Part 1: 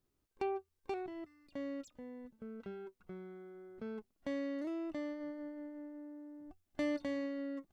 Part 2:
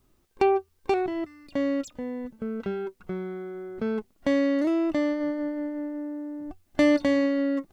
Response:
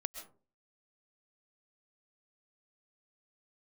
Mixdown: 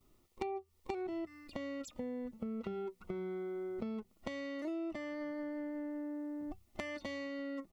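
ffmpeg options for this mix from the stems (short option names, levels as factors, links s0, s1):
-filter_complex "[0:a]volume=0.944[s0];[1:a]bandreject=f=60:t=h:w=6,bandreject=f=120:t=h:w=6,bandreject=f=180:t=h:w=6,acompressor=threshold=0.0282:ratio=4,volume=-1,adelay=7,volume=0.708[s1];[s0][s1]amix=inputs=2:normalize=0,asuperstop=centerf=1600:order=8:qfactor=6.5,acompressor=threshold=0.0126:ratio=3"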